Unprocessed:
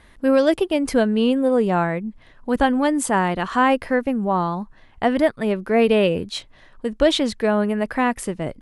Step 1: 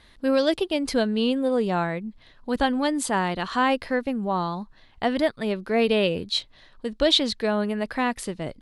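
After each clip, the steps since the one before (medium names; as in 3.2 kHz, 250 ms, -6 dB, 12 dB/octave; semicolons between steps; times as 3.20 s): peaking EQ 4.1 kHz +11 dB 0.81 oct; trim -5 dB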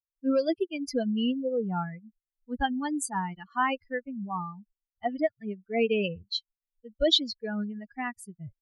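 expander on every frequency bin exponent 3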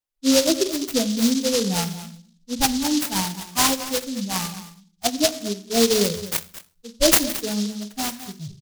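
delay 219 ms -14.5 dB; on a send at -9 dB: reverberation RT60 0.50 s, pre-delay 3 ms; on the sum: delay time shaken by noise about 4.7 kHz, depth 0.19 ms; trim +6.5 dB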